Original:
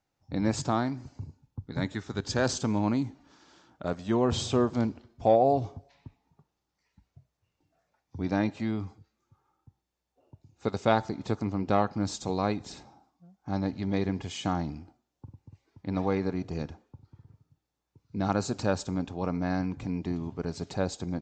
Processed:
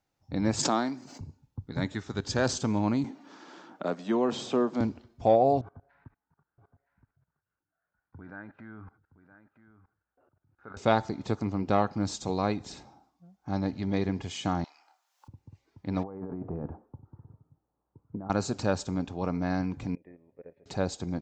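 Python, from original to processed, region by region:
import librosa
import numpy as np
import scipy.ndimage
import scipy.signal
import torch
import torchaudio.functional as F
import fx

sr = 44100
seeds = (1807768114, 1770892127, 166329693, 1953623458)

y = fx.chain(x, sr, fx.highpass(hz=190.0, slope=24),
    fx.high_shelf(hz=4300.0, db=7.0),
    fx.pre_swell(db_per_s=26.0), at=(0.59, 1.21))
y = fx.chain(y, sr, fx.highpass(hz=190.0, slope=24),
    fx.high_shelf(hz=3900.0, db=-6.0),
    fx.band_squash(depth_pct=40), at=(3.04, 4.81))
y = fx.chain(y, sr, fx.level_steps(step_db=23),
    fx.lowpass_res(hz=1500.0, q=9.1),
    fx.echo_single(ms=969, db=-14.0), at=(5.61, 10.77))
y = fx.chain(y, sr, fx.highpass(hz=840.0, slope=24),
    fx.doubler(ms=28.0, db=-7),
    fx.band_squash(depth_pct=100), at=(14.64, 15.28))
y = fx.chain(y, sr, fx.low_shelf(hz=160.0, db=-4.5),
    fx.over_compress(threshold_db=-37.0, ratio=-1.0),
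    fx.lowpass(hz=1200.0, slope=24), at=(16.03, 18.3))
y = fx.chain(y, sr, fx.peak_eq(hz=100.0, db=-4.5, octaves=2.0),
    fx.level_steps(step_db=11),
    fx.formant_cascade(vowel='e'), at=(19.95, 20.66))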